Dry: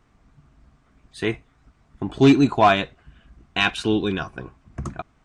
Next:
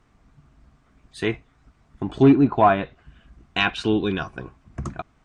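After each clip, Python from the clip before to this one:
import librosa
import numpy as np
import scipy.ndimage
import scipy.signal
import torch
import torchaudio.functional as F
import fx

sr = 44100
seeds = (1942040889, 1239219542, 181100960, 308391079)

y = fx.env_lowpass_down(x, sr, base_hz=1500.0, full_db=-13.5)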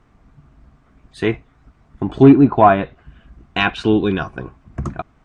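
y = fx.high_shelf(x, sr, hz=2800.0, db=-8.0)
y = y * 10.0 ** (6.0 / 20.0)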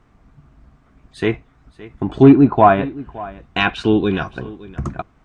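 y = x + 10.0 ** (-19.0 / 20.0) * np.pad(x, (int(567 * sr / 1000.0), 0))[:len(x)]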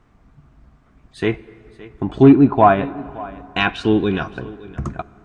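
y = fx.rev_plate(x, sr, seeds[0], rt60_s=3.7, hf_ratio=0.5, predelay_ms=0, drr_db=19.0)
y = y * 10.0 ** (-1.0 / 20.0)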